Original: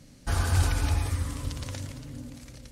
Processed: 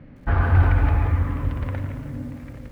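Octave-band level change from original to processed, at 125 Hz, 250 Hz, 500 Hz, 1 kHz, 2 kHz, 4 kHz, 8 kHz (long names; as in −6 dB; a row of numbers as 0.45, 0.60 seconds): +8.0 dB, +7.5 dB, +7.5 dB, +7.5 dB, +6.0 dB, below −10 dB, below −20 dB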